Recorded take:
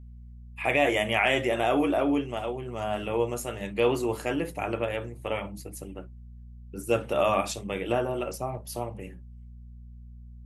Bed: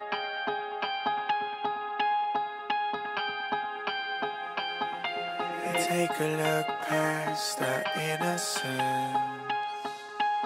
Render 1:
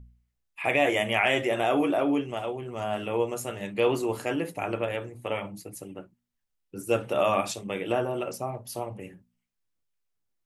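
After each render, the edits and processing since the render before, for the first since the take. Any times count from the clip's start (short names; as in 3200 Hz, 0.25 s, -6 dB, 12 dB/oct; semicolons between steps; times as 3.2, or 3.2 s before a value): de-hum 60 Hz, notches 4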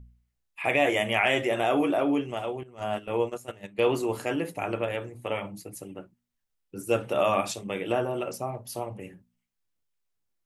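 2.63–3.93 gate -33 dBFS, range -13 dB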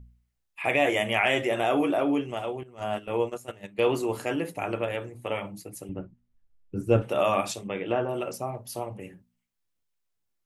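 5.89–7.02 RIAA curve playback; 7.68–8.09 LPF 3100 Hz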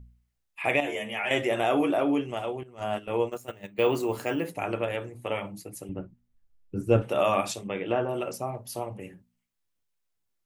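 0.8–1.31 metallic resonator 72 Hz, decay 0.23 s, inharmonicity 0.002; 3.32–4.5 careless resampling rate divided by 2×, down filtered, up hold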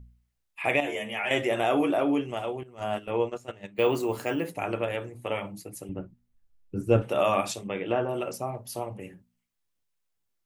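3.1–3.74 LPF 4800 Hz -> 9500 Hz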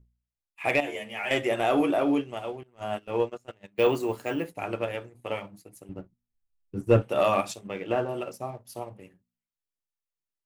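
sample leveller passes 1; upward expander 1.5:1, over -39 dBFS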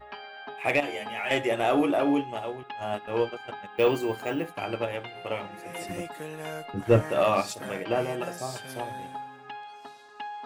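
add bed -9.5 dB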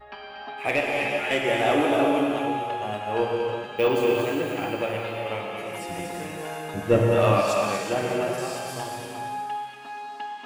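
thin delay 0.235 s, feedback 49%, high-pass 2000 Hz, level -6.5 dB; non-linear reverb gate 0.43 s flat, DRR -1 dB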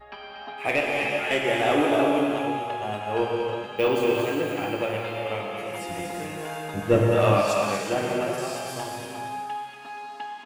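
doubler 20 ms -12 dB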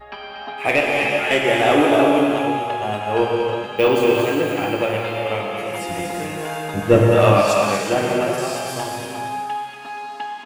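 gain +6.5 dB; limiter -2 dBFS, peak gain reduction 1.5 dB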